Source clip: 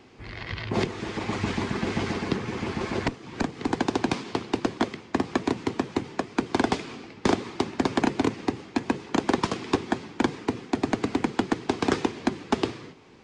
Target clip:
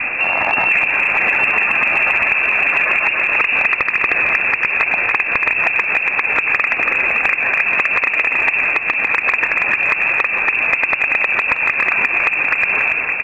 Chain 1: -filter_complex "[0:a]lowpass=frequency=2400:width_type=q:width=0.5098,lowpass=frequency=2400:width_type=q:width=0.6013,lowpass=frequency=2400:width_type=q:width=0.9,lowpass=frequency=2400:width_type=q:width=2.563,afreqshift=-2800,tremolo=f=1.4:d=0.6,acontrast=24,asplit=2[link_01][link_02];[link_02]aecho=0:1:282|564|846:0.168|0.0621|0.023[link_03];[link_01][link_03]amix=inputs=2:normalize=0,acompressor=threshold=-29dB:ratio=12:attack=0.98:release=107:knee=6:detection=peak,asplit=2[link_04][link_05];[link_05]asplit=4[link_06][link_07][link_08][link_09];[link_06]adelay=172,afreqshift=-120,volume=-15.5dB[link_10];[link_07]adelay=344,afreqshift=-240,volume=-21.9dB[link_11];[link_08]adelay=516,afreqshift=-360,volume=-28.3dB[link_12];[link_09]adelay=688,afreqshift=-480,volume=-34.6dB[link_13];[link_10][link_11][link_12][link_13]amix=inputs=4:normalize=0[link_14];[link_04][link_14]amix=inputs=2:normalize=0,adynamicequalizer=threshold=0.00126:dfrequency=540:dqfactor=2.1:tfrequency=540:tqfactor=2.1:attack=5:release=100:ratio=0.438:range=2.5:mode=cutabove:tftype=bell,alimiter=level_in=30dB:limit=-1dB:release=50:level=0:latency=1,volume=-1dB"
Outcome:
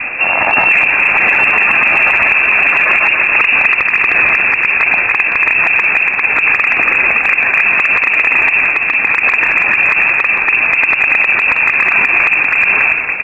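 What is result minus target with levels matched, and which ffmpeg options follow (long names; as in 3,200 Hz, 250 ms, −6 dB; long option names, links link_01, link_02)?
downward compressor: peak gain reduction −9.5 dB
-filter_complex "[0:a]lowpass=frequency=2400:width_type=q:width=0.5098,lowpass=frequency=2400:width_type=q:width=0.6013,lowpass=frequency=2400:width_type=q:width=0.9,lowpass=frequency=2400:width_type=q:width=2.563,afreqshift=-2800,tremolo=f=1.4:d=0.6,acontrast=24,asplit=2[link_01][link_02];[link_02]aecho=0:1:282|564|846:0.168|0.0621|0.023[link_03];[link_01][link_03]amix=inputs=2:normalize=0,acompressor=threshold=-39.5dB:ratio=12:attack=0.98:release=107:knee=6:detection=peak,asplit=2[link_04][link_05];[link_05]asplit=4[link_06][link_07][link_08][link_09];[link_06]adelay=172,afreqshift=-120,volume=-15.5dB[link_10];[link_07]adelay=344,afreqshift=-240,volume=-21.9dB[link_11];[link_08]adelay=516,afreqshift=-360,volume=-28.3dB[link_12];[link_09]adelay=688,afreqshift=-480,volume=-34.6dB[link_13];[link_10][link_11][link_12][link_13]amix=inputs=4:normalize=0[link_14];[link_04][link_14]amix=inputs=2:normalize=0,adynamicequalizer=threshold=0.00126:dfrequency=540:dqfactor=2.1:tfrequency=540:tqfactor=2.1:attack=5:release=100:ratio=0.438:range=2.5:mode=cutabove:tftype=bell,alimiter=level_in=30dB:limit=-1dB:release=50:level=0:latency=1,volume=-1dB"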